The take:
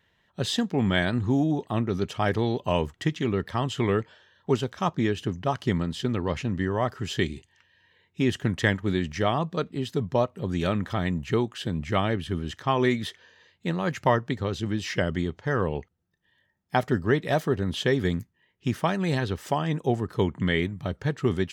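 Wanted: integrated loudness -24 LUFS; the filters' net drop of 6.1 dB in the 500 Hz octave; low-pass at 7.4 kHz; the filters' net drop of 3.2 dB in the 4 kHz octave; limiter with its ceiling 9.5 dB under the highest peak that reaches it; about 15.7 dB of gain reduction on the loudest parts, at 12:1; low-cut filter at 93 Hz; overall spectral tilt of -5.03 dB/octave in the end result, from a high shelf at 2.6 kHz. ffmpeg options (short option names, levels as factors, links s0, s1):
-af "highpass=93,lowpass=7400,equalizer=f=500:t=o:g=-8.5,highshelf=f=2600:g=3.5,equalizer=f=4000:t=o:g=-7,acompressor=threshold=0.0158:ratio=12,volume=8.91,alimiter=limit=0.282:level=0:latency=1"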